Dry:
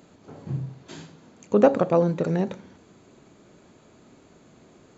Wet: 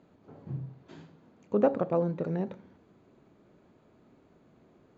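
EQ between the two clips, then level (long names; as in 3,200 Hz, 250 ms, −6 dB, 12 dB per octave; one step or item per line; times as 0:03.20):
low-pass filter 5,300 Hz 12 dB per octave
high-shelf EQ 2,600 Hz −10.5 dB
−7.0 dB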